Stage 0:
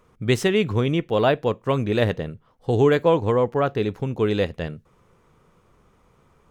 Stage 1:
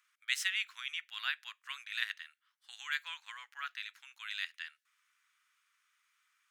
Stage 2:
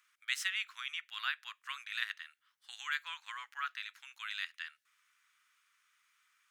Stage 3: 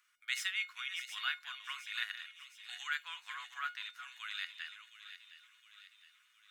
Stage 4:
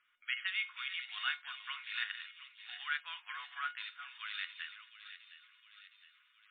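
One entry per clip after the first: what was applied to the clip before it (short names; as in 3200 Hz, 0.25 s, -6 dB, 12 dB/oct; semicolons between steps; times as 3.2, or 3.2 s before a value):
steep high-pass 1500 Hz 36 dB/oct; gain -5 dB
in parallel at +1 dB: compressor, threshold -46 dBFS, peak gain reduction 18 dB; on the sum: dynamic EQ 1200 Hz, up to +6 dB, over -52 dBFS, Q 2.1; gain -4 dB
reverse delay 0.348 s, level -11.5 dB; resonator 720 Hz, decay 0.21 s, harmonics all, mix 80%; thin delay 0.714 s, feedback 53%, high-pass 2300 Hz, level -10 dB; gain +10.5 dB
gain +1 dB; MP3 16 kbps 8000 Hz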